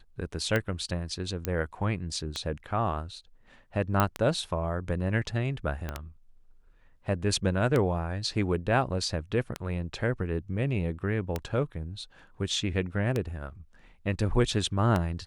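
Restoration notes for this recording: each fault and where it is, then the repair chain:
tick 33 1/3 rpm -14 dBFS
1.45 pop -13 dBFS
4 pop -9 dBFS
5.89 pop -19 dBFS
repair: de-click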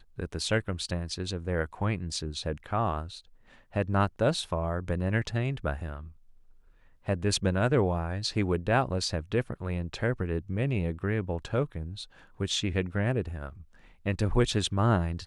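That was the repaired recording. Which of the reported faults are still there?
5.89 pop

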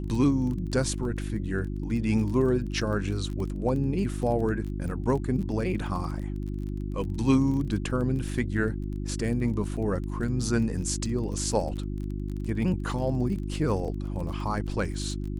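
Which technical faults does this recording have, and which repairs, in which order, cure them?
crackle 25/s -34 dBFS
hum 50 Hz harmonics 7 -32 dBFS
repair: de-click; de-hum 50 Hz, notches 7

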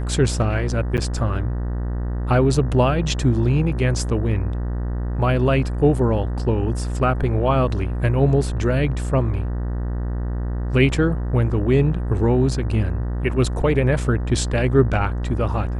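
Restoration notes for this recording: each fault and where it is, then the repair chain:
buzz 60 Hz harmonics 32 -24 dBFS
0.97–0.98 gap 8.8 ms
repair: de-hum 60 Hz, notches 32; interpolate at 0.97, 8.8 ms

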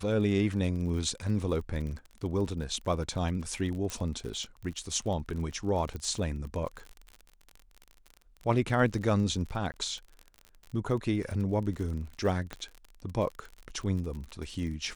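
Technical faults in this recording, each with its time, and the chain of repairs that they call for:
crackle 44/s -37 dBFS
3.9 pop
5.96 pop -26 dBFS
9.72–9.74 gap 19 ms
12.53 pop -21 dBFS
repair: de-click; interpolate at 9.72, 19 ms

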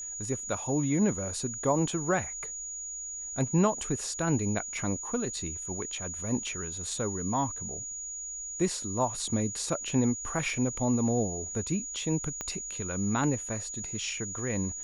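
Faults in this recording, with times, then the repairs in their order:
tone 6800 Hz -36 dBFS
12.41 pop -19 dBFS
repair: de-click; notch 6800 Hz, Q 30

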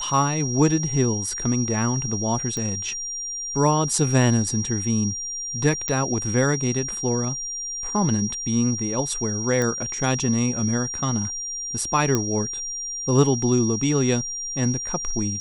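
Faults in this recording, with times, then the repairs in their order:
tone 5700 Hz -28 dBFS
2.57 pop -15 dBFS
5.88 pop -8 dBFS
9.62 pop -12 dBFS
12.15 pop -7 dBFS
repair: de-click; notch 5700 Hz, Q 30

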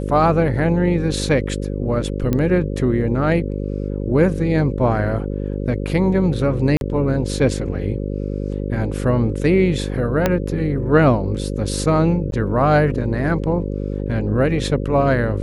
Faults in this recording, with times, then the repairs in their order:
buzz 50 Hz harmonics 11 -24 dBFS
2.33 pop -8 dBFS
6.77–6.81 gap 41 ms
10.26 pop -3 dBFS
12.31–12.32 gap 12 ms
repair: de-click; de-hum 50 Hz, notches 11; interpolate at 6.77, 41 ms; interpolate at 12.31, 12 ms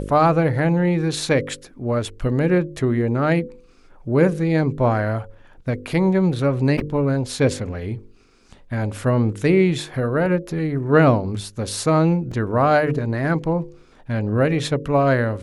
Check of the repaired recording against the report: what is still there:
2.33 pop
10.26 pop

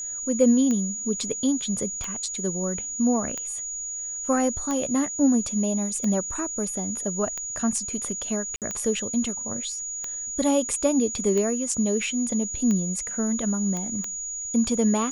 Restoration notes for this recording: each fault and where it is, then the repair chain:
tick 45 rpm -16 dBFS
tone 6800 Hz -30 dBFS
8.56–8.62 gap 58 ms
13.77 pop -18 dBFS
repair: de-click; notch 6800 Hz, Q 30; interpolate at 8.56, 58 ms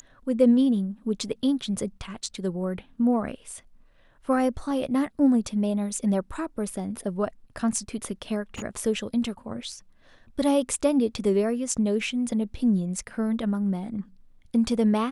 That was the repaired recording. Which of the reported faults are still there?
none

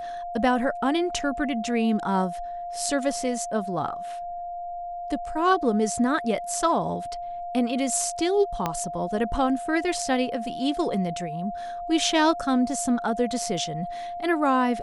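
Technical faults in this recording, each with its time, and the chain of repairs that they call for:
tone 700 Hz -31 dBFS
8.66 pop -11 dBFS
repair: de-click; notch 700 Hz, Q 30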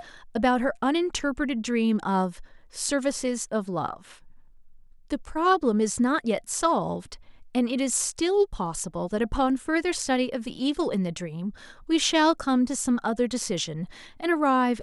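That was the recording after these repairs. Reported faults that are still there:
8.66 pop

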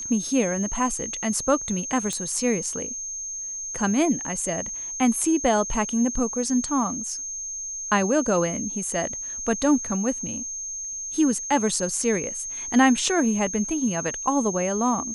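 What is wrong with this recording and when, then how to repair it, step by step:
tone 6400 Hz -30 dBFS
2.13 pop -14 dBFS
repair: de-click; notch 6400 Hz, Q 30

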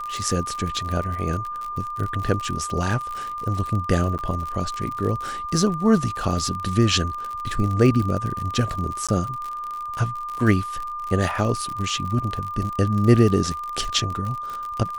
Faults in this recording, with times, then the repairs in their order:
crackle 57/s -27 dBFS
tone 1200 Hz -28 dBFS
4.18–4.19 gap 8.7 ms
9.07–9.09 gap 16 ms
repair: de-click; notch 1200 Hz, Q 30; interpolate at 4.18, 8.7 ms; interpolate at 9.07, 16 ms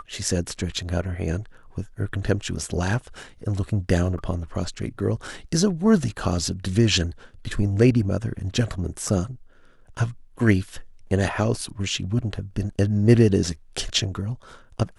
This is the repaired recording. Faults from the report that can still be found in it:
none

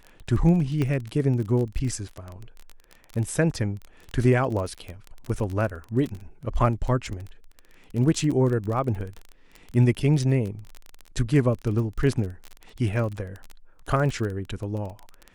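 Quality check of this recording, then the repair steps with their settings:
crackle 23/s -29 dBFS
0.82 pop -15 dBFS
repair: de-click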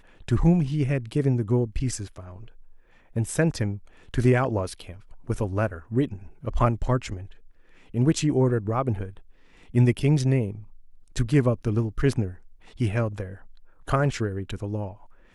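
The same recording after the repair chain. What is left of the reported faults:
none

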